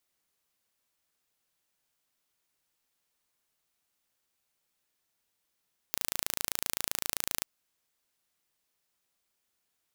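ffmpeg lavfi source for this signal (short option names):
-f lavfi -i "aevalsrc='0.708*eq(mod(n,1592),0)':d=1.49:s=44100"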